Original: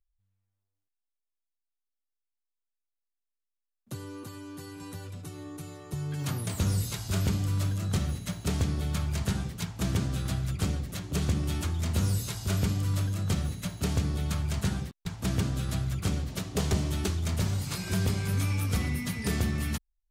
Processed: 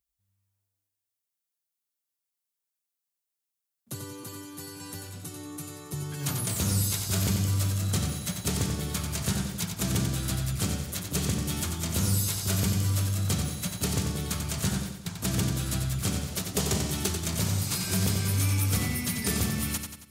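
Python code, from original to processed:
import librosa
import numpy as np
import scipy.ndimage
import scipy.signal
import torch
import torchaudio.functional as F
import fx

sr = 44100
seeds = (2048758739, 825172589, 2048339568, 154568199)

y = scipy.signal.sosfilt(scipy.signal.butter(2, 81.0, 'highpass', fs=sr, output='sos'), x)
y = fx.high_shelf(y, sr, hz=5200.0, db=11.0)
y = fx.echo_feedback(y, sr, ms=91, feedback_pct=49, wet_db=-6.5)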